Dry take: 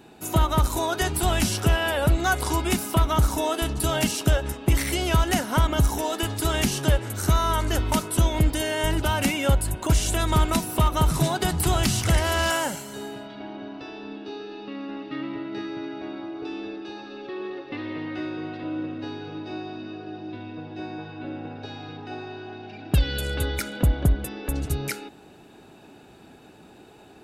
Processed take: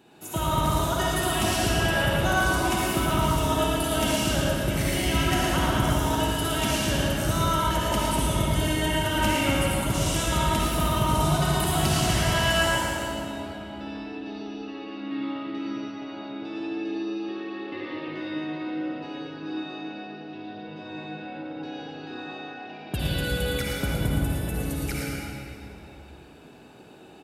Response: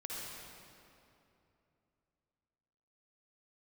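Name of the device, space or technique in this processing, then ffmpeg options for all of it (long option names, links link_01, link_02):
PA in a hall: -filter_complex "[0:a]highpass=frequency=120:poles=1,equalizer=frequency=3000:width_type=o:width=0.37:gain=3,aecho=1:1:112:0.531[link_01];[1:a]atrim=start_sample=2205[link_02];[link_01][link_02]afir=irnorm=-1:irlink=0,volume=-1dB"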